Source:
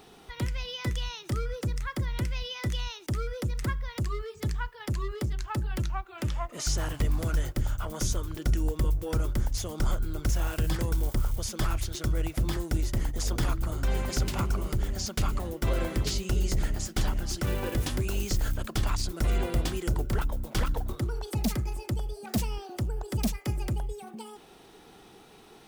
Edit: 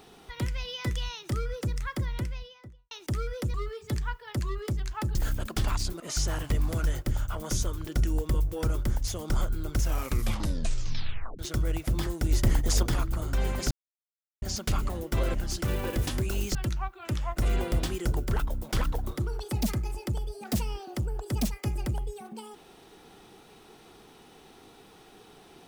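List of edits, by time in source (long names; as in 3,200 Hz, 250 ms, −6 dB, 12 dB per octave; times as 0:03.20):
0:01.95–0:02.91: fade out and dull
0:03.54–0:04.07: remove
0:05.68–0:06.50: swap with 0:18.34–0:19.19
0:10.30: tape stop 1.59 s
0:12.81–0:13.33: clip gain +5.5 dB
0:14.21–0:14.92: silence
0:15.84–0:17.13: remove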